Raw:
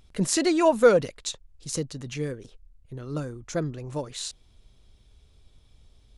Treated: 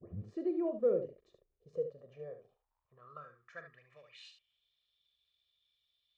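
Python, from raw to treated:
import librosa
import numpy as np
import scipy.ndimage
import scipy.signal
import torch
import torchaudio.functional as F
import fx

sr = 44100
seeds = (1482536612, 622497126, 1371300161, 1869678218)

p1 = fx.tape_start_head(x, sr, length_s=0.33)
p2 = fx.peak_eq(p1, sr, hz=780.0, db=-4.5, octaves=2.1)
p3 = p2 + 0.88 * np.pad(p2, (int(1.7 * sr / 1000.0), 0))[:len(p2)]
p4 = fx.dmg_crackle(p3, sr, seeds[0], per_s=200.0, level_db=-55.0)
p5 = p4 + fx.room_early_taps(p4, sr, ms=(41, 73), db=(-11.5, -9.0), dry=0)
p6 = fx.filter_sweep_bandpass(p5, sr, from_hz=330.0, to_hz=3600.0, start_s=1.26, end_s=4.71, q=5.1)
y = fx.spacing_loss(p6, sr, db_at_10k=21)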